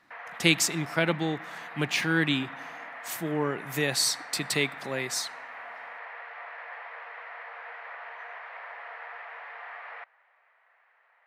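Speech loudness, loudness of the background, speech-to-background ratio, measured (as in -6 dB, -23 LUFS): -27.5 LUFS, -41.0 LUFS, 13.5 dB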